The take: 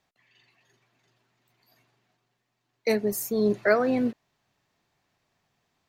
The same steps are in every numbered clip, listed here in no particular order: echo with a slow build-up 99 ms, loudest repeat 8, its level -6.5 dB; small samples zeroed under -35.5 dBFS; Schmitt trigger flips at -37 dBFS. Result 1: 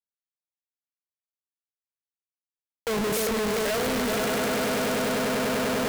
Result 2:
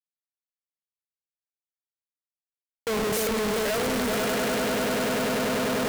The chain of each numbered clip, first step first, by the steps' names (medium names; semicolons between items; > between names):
echo with a slow build-up > Schmitt trigger > small samples zeroed; small samples zeroed > echo with a slow build-up > Schmitt trigger